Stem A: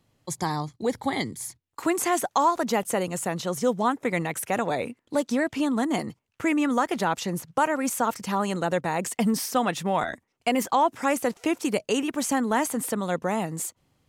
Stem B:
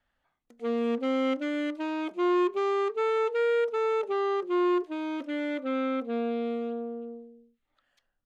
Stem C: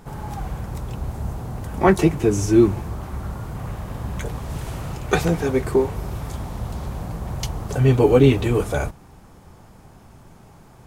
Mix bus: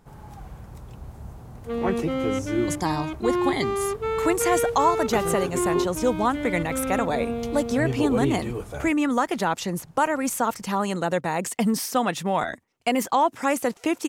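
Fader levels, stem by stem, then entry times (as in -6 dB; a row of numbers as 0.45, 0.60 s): +1.0, +0.5, -11.5 dB; 2.40, 1.05, 0.00 s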